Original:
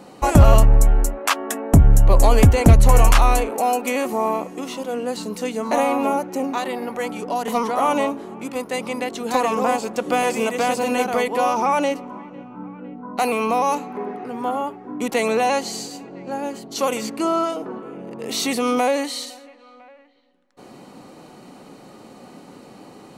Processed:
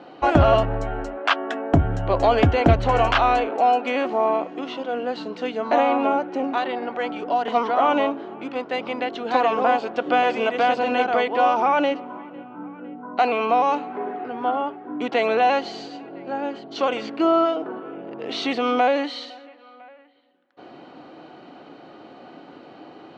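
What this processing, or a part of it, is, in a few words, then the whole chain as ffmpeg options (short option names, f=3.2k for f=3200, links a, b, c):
guitar cabinet: -af "highpass=88,equalizer=f=120:t=q:w=4:g=-4,equalizer=f=200:t=q:w=4:g=-8,equalizer=f=320:t=q:w=4:g=6,equalizer=f=690:t=q:w=4:g=7,equalizer=f=1.5k:t=q:w=4:g=7,equalizer=f=3.1k:t=q:w=4:g=5,lowpass=f=4.2k:w=0.5412,lowpass=f=4.2k:w=1.3066,volume=-2.5dB"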